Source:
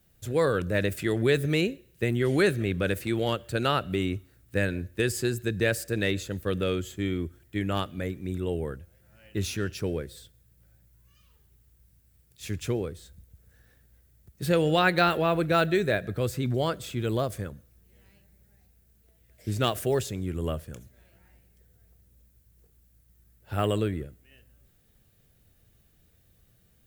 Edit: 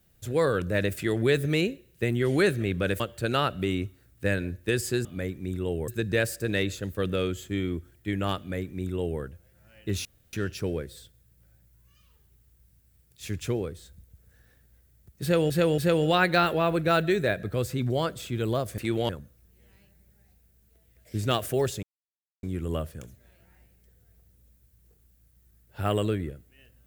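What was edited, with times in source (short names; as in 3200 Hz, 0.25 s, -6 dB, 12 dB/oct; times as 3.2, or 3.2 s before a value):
3–3.31 move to 17.42
7.86–8.69 copy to 5.36
9.53 insert room tone 0.28 s
14.42–14.7 loop, 3 plays
20.16 insert silence 0.60 s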